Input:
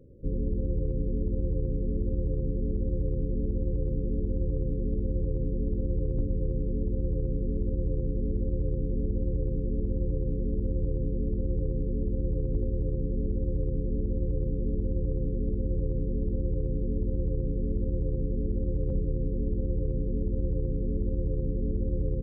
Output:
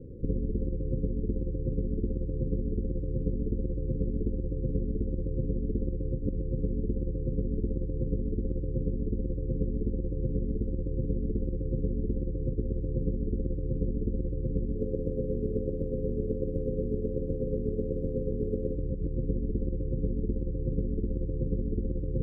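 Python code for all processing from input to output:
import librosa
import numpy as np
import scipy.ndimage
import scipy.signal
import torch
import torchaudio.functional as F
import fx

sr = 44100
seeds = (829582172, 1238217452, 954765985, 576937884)

y = fx.spec_flatten(x, sr, power=0.4, at=(14.75, 18.75), fade=0.02)
y = fx.room_flutter(y, sr, wall_m=5.6, rt60_s=0.27, at=(14.75, 18.75), fade=0.02)
y = fx.over_compress(y, sr, threshold_db=-31.0, ratio=-0.5)
y = scipy.signal.sosfilt(scipy.signal.ellip(4, 1.0, 40, 510.0, 'lowpass', fs=sr, output='sos'), y)
y = F.gain(torch.from_numpy(y), 4.0).numpy()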